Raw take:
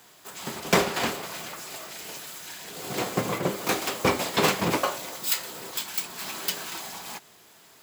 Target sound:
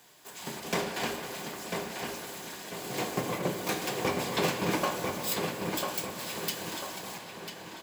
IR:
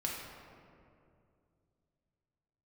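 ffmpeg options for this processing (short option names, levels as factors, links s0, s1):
-filter_complex "[0:a]bandreject=f=50:t=h:w=6,bandreject=f=100:t=h:w=6,bandreject=f=150:t=h:w=6,alimiter=limit=0.224:level=0:latency=1:release=423,bandreject=f=1300:w=8.8,asplit=2[s0][s1];[s1]adelay=995,lowpass=f=3200:p=1,volume=0.631,asplit=2[s2][s3];[s3]adelay=995,lowpass=f=3200:p=1,volume=0.43,asplit=2[s4][s5];[s5]adelay=995,lowpass=f=3200:p=1,volume=0.43,asplit=2[s6][s7];[s7]adelay=995,lowpass=f=3200:p=1,volume=0.43,asplit=2[s8][s9];[s9]adelay=995,lowpass=f=3200:p=1,volume=0.43[s10];[s0][s2][s4][s6][s8][s10]amix=inputs=6:normalize=0,asplit=2[s11][s12];[1:a]atrim=start_sample=2205,asetrate=28224,aresample=44100[s13];[s12][s13]afir=irnorm=-1:irlink=0,volume=0.422[s14];[s11][s14]amix=inputs=2:normalize=0,volume=0.422"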